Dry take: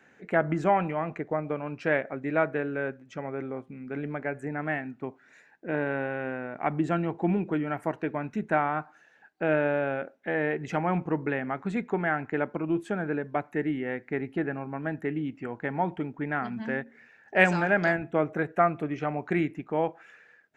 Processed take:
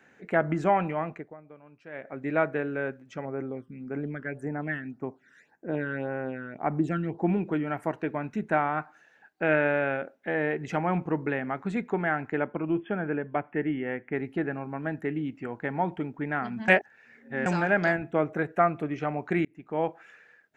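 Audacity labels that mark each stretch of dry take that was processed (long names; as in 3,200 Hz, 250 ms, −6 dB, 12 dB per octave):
1.010000	2.260000	duck −18.5 dB, fades 0.34 s
3.250000	7.260000	all-pass phaser stages 12, 1.8 Hz, lowest notch 720–4,100 Hz
8.770000	9.970000	dynamic equaliser 2,000 Hz, up to +7 dB, over −45 dBFS, Q 1.4
12.370000	14.150000	linear-phase brick-wall low-pass 3,500 Hz
16.680000	17.460000	reverse
19.450000	19.850000	fade in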